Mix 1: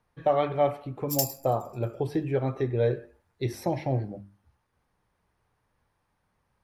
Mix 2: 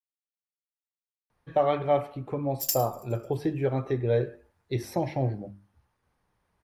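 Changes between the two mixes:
speech: entry +1.30 s; background: entry +1.50 s

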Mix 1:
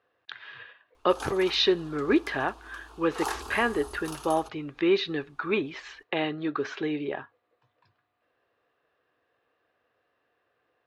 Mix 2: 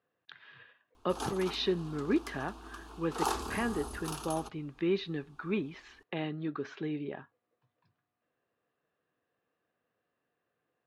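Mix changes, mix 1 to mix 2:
speech -10.5 dB; master: add bell 180 Hz +13.5 dB 1.1 oct

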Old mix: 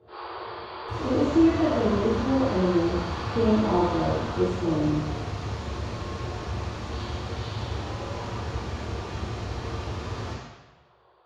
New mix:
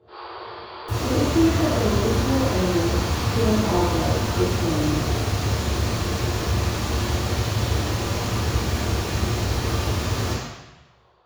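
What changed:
second sound +9.0 dB; master: remove air absorption 100 m

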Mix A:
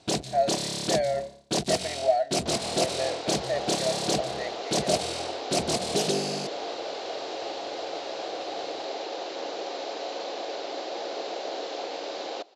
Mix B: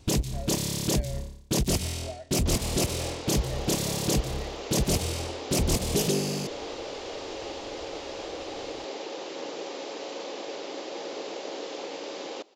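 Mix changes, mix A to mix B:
speech -11.0 dB; master: remove speaker cabinet 200–9500 Hz, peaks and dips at 260 Hz -3 dB, 700 Hz +10 dB, 1500 Hz +4 dB, 4100 Hz +6 dB, 6800 Hz -3 dB

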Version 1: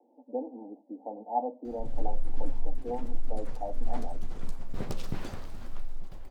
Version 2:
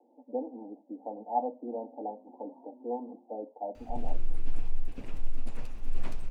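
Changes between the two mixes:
background: entry +2.10 s; master: add bell 2600 Hz +9.5 dB 0.39 oct

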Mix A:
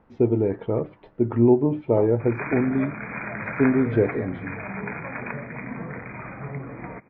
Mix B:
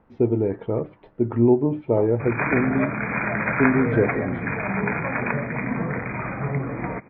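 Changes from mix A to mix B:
background +8.0 dB; master: add air absorption 90 m

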